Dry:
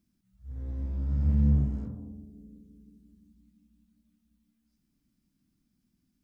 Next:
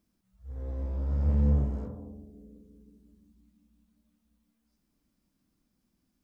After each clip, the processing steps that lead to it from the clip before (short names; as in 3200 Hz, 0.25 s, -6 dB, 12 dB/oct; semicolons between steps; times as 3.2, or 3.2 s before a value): graphic EQ 125/250/500/1000 Hz -5/-4/+9/+5 dB; gain +1 dB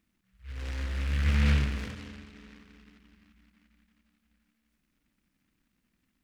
noise-modulated delay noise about 1900 Hz, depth 0.32 ms